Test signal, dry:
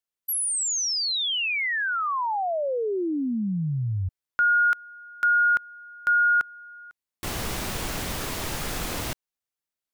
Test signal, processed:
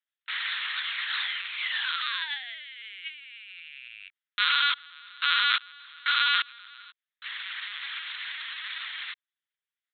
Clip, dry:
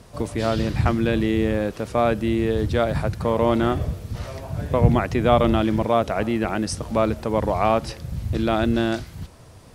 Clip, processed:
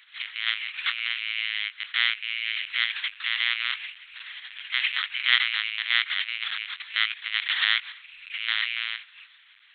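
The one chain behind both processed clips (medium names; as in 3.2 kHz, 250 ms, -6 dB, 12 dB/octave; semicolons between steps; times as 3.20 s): sample-rate reducer 2.6 kHz, jitter 20%; LPC vocoder at 8 kHz pitch kept; inverse Chebyshev high-pass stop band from 580 Hz, stop band 60 dB; trim +8 dB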